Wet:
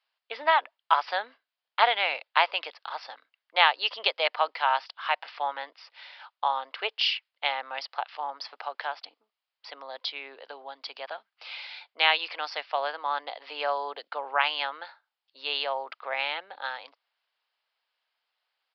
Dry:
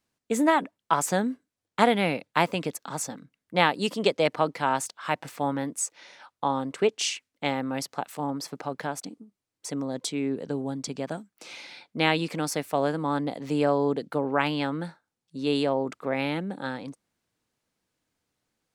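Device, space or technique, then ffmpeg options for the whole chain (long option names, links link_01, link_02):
musical greeting card: -af "aresample=11025,aresample=44100,highpass=frequency=710:width=0.5412,highpass=frequency=710:width=1.3066,equalizer=frequency=3000:width_type=o:width=0.37:gain=5,volume=2dB"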